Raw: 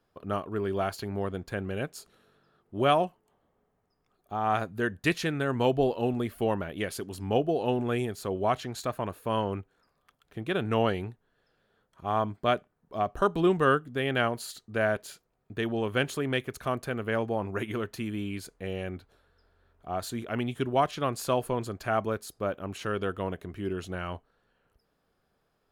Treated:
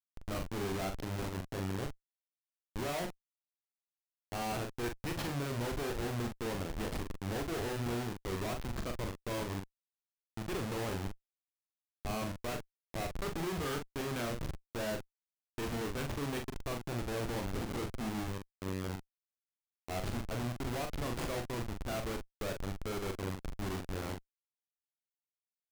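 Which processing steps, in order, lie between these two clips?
16.86–17.35 tilt -2 dB/oct; Schmitt trigger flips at -31.5 dBFS; doubler 42 ms -5 dB; gain -6 dB

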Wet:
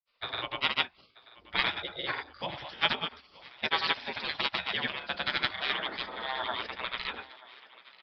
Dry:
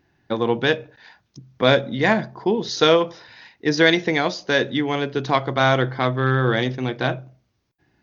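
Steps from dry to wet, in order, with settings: spectral gate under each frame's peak -20 dB weak; grains, pitch spread up and down by 0 st; on a send: thinning echo 0.934 s, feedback 59%, high-pass 330 Hz, level -19.5 dB; on the sum: downsampling 11025 Hz; gain +4 dB

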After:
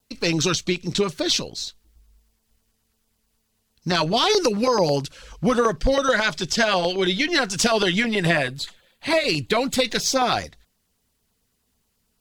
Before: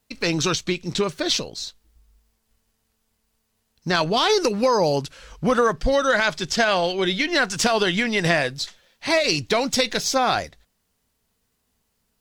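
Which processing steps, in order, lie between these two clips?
vibrato 0.45 Hz 6.7 cents; LFO notch saw down 9.2 Hz 410–2500 Hz; 8.05–9.85 bell 5600 Hz -12.5 dB 0.41 oct; gain +1.5 dB

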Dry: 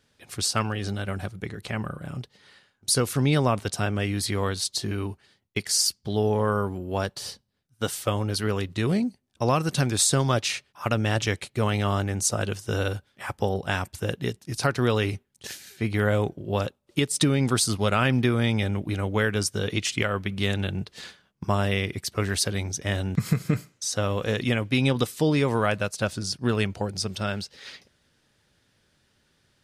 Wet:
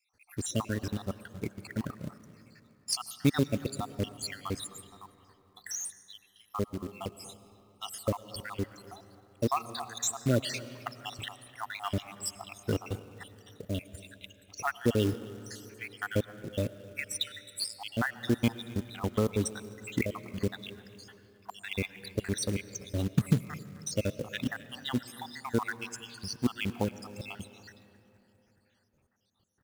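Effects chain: random spectral dropouts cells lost 77%; dynamic EQ 260 Hz, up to +7 dB, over -44 dBFS, Q 2; speakerphone echo 0.26 s, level -18 dB; on a send at -15 dB: reverb RT60 3.4 s, pre-delay 70 ms; on the sum: short-mantissa float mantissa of 2-bit; gain -3 dB

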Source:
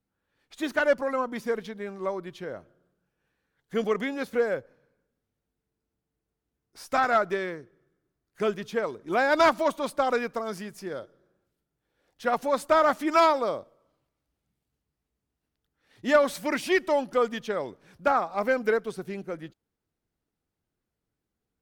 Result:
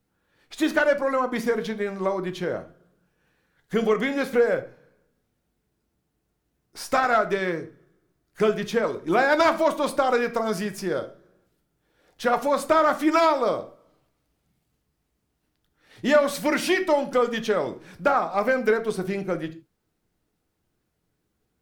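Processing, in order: compressor 2:1, threshold -31 dBFS, peak gain reduction 9 dB; on a send: reverb, pre-delay 6 ms, DRR 8 dB; on the sum: gain +8.5 dB

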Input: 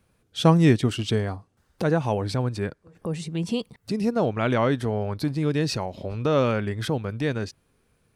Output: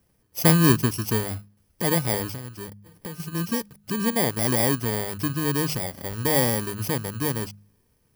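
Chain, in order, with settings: FFT order left unsorted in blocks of 32 samples; de-hum 51.11 Hz, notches 4; 2.29–3.2 compressor 16:1, threshold -32 dBFS, peak gain reduction 12.5 dB

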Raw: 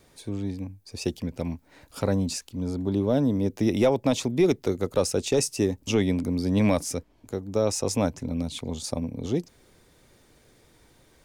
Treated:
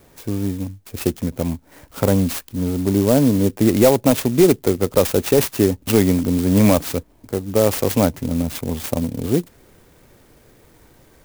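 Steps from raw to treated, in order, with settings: high shelf 11000 Hz -11 dB; clock jitter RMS 0.069 ms; gain +8 dB

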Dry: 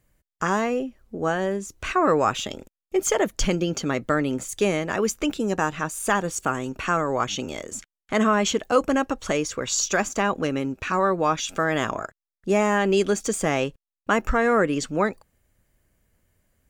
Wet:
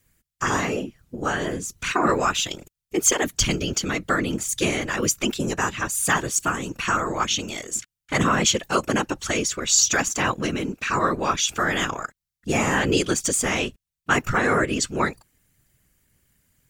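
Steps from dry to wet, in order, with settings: high shelf 2000 Hz +8 dB; whisperiser; bell 630 Hz -5.5 dB 1.1 oct

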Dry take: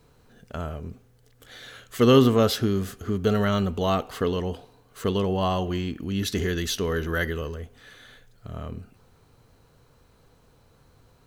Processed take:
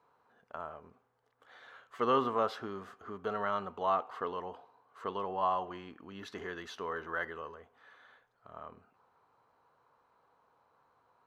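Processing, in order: band-pass 1000 Hz, Q 2.4

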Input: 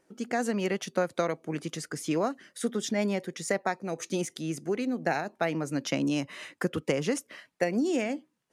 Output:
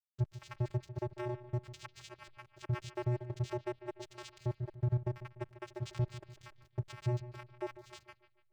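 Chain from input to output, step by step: random spectral dropouts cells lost 79%; 1.84–4.18 bell 880 Hz +14.5 dB 1.7 oct; compressor 4:1, threshold -38 dBFS, peak gain reduction 20 dB; soft clip -39.5 dBFS, distortion -8 dB; vocoder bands 4, square 122 Hz; backlash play -57.5 dBFS; analogue delay 0.147 s, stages 4096, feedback 44%, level -15 dB; gain +10.5 dB

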